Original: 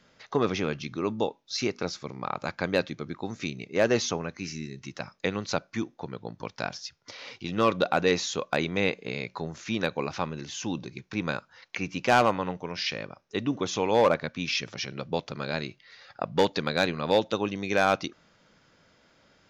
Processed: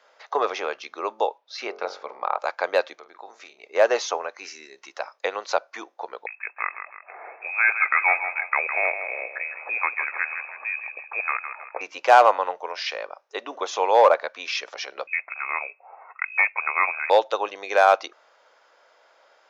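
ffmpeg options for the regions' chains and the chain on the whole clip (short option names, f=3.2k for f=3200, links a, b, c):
-filter_complex "[0:a]asettb=1/sr,asplit=3[a][b][c];[a]atrim=end=1.384[d];[b]atrim=start=1.38:end=2.39,asetpts=PTS-STARTPTS,afade=t=in:d=0.004:c=qsin,afade=t=out:st=1.006:d=0.004:c=qsin,lowpass=3.9k,equalizer=f=220:t=o:w=0.24:g=6,bandreject=f=46.36:t=h:w=4,bandreject=f=92.72:t=h:w=4,bandreject=f=139.08:t=h:w=4,bandreject=f=185.44:t=h:w=4,bandreject=f=231.8:t=h:w=4,bandreject=f=278.16:t=h:w=4,bandreject=f=324.52:t=h:w=4,bandreject=f=370.88:t=h:w=4,bandreject=f=417.24:t=h:w=4,bandreject=f=463.6:t=h:w=4,bandreject=f=509.96:t=h:w=4,bandreject=f=556.32:t=h:w=4,bandreject=f=602.68:t=h:w=4,bandreject=f=649.04:t=h:w=4,bandreject=f=695.4:t=h:w=4,bandreject=f=741.76:t=h:w=4,bandreject=f=788.12:t=h:w=4,bandreject=f=834.48:t=h:w=4,bandreject=f=880.84:t=h:w=4,bandreject=f=927.2:t=h:w=4,bandreject=f=973.56:t=h:w=4,bandreject=f=1.01992k:t=h:w=4,bandreject=f=1.06628k:t=h:w=4,bandreject=f=1.11264k:t=h:w=4,bandreject=f=1.159k:t=h:w=4,bandreject=f=1.20536k:t=h:w=4,bandreject=f=1.25172k:t=h:w=4,bandreject=f=1.29808k:t=h:w=4,bandreject=f=1.34444k:t=h:w=4,bandreject=f=1.3908k:t=h:w=4,bandreject=f=1.43716k:t=h:w=4,bandreject=f=1.48352k:t=h:w=4,bandreject=f=1.52988k:t=h:w=4,bandreject=f=1.57624k:t=h:w=4[e];[c]atrim=start=2.386[f];[d][e]acrossfade=d=0.004:c1=hsin:c2=qsin[g];[g][f]acrossfade=d=0.004:c1=qsin:c2=hsin,asettb=1/sr,asplit=3[h][i][j];[h]atrim=end=2.954[k];[i]atrim=start=2.95:end=3.64,asetpts=PTS-STARTPTS,afade=t=in:d=0.004:c=qsin,afade=t=out:st=0.686:d=0.004:c=qsin,acompressor=threshold=-48dB:ratio=2:attack=3.2:release=140:knee=1:detection=peak,asplit=2[l][m];[m]adelay=47,volume=-10.5dB[n];[l][n]amix=inputs=2:normalize=0,atrim=end_sample=30429[o];[j]atrim=start=3.636[p];[k][o]acrossfade=d=0.004:c1=hsin:c2=qsin[q];[q][p]acrossfade=d=0.004:c1=qsin:c2=hsin,asettb=1/sr,asplit=3[r][s][t];[r]atrim=end=6.264[u];[s]atrim=start=6.26:end=11.81,asetpts=PTS-STARTPTS,afade=t=in:d=0.004:c=qsin,afade=t=out:st=5.546:d=0.004:c=qsin,aecho=1:1:160|320|480|640|800:0.355|0.156|0.0687|0.0302|0.0133,atrim=end_sample=244755,lowpass=f=2.3k:t=q:w=0.5098,lowpass=f=2.3k:t=q:w=0.6013,lowpass=f=2.3k:t=q:w=0.9,lowpass=f=2.3k:t=q:w=2.563,afreqshift=-2700[v];[t]atrim=start=11.806[w];[u][v]acrossfade=d=0.004:c1=hsin:c2=qsin[x];[x][w]acrossfade=d=0.004:c1=qsin:c2=hsin,asettb=1/sr,asplit=3[y][z][aa];[y]atrim=end=15.074[ab];[z]atrim=start=15.07:end=17.1,asetpts=PTS-STARTPTS,afade=t=in:d=0.004:c=qsin,afade=t=out:st=2.026:d=0.004:c=qsin,bandreject=f=1k:w=5.8,lowpass=f=2.3k:t=q:w=0.5098,lowpass=f=2.3k:t=q:w=0.6013,lowpass=f=2.3k:t=q:w=0.9,lowpass=f=2.3k:t=q:w=2.563,afreqshift=-2700[ac];[aa]atrim=start=17.096[ad];[ab][ac]acrossfade=d=0.004:c1=hsin:c2=qsin[ae];[ae][ad]acrossfade=d=0.004:c1=qsin:c2=hsin,highpass=f=470:w=0.5412,highpass=f=470:w=1.3066,equalizer=f=810:t=o:w=2:g=10.5,volume=-1dB"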